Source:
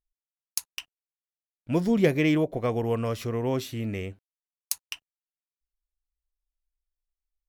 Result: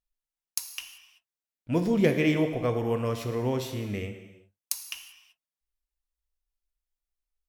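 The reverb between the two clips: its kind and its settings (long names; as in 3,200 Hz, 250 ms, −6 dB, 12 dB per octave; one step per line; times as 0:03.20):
reverb whose tail is shaped and stops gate 410 ms falling, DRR 6 dB
level −1.5 dB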